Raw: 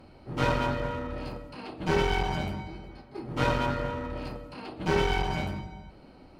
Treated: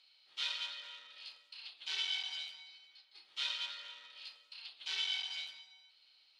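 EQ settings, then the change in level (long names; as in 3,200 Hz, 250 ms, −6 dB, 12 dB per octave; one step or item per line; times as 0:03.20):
four-pole ladder band-pass 4,000 Hz, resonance 60%
+9.0 dB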